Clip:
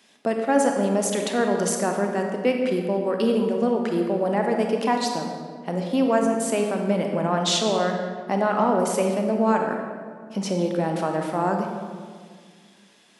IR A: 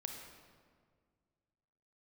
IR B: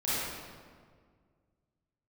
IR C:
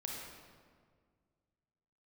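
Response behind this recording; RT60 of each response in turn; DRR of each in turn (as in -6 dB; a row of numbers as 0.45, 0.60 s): A; 1.9, 1.8, 1.8 s; 2.5, -12.0, -2.0 dB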